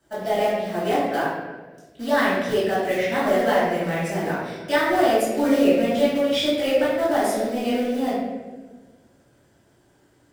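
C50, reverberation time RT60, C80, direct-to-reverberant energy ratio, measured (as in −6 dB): −0.5 dB, 1.3 s, 2.0 dB, −11.5 dB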